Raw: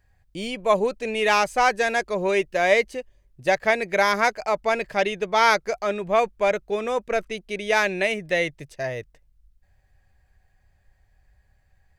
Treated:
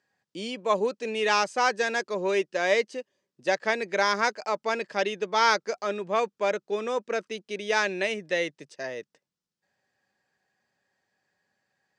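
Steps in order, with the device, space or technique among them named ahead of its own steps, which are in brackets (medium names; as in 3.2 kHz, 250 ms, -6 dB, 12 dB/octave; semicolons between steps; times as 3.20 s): television speaker (cabinet simulation 200–8100 Hz, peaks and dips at 690 Hz -6 dB, 2.2 kHz -5 dB, 5.2 kHz +4 dB); trim -2.5 dB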